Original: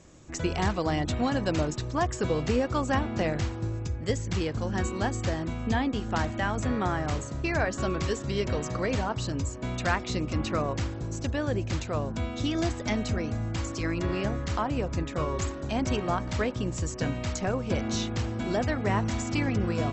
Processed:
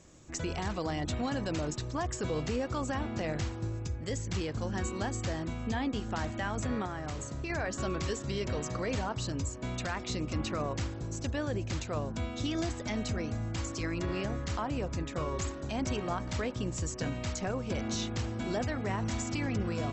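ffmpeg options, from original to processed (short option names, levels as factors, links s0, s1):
-filter_complex "[0:a]asettb=1/sr,asplit=3[s0][s1][s2];[s0]atrim=end=6.854[s3];[s1]atrim=start=6.85:end=7.5,asetpts=PTS-STARTPTS,afade=t=in:d=0.004:c=qsin,afade=t=out:st=0.646:d=0.004:c=qsin,acompressor=threshold=0.0355:ratio=6:attack=3.2:release=140:knee=1:detection=peak[s4];[s2]atrim=start=7.496[s5];[s3][s4]acrossfade=d=0.004:c1=hsin:c2=qsin[s6];[s6][s5]acrossfade=d=0.004:c1=qsin:c2=hsin,highshelf=f=4800:g=4.5,alimiter=limit=0.1:level=0:latency=1:release=22,volume=0.631"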